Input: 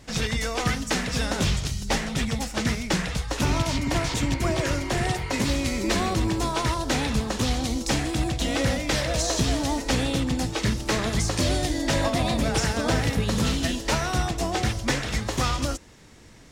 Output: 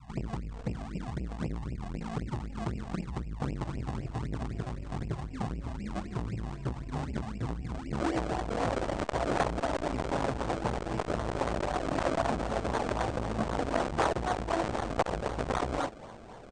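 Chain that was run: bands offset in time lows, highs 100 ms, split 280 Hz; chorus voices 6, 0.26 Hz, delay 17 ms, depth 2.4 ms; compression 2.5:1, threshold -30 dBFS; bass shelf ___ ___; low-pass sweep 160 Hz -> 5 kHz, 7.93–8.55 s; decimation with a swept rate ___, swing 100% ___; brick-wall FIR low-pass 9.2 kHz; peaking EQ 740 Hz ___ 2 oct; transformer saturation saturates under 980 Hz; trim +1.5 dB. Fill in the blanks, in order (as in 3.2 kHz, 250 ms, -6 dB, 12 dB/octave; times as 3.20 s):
110 Hz, -5 dB, 33×, 3.9 Hz, +9 dB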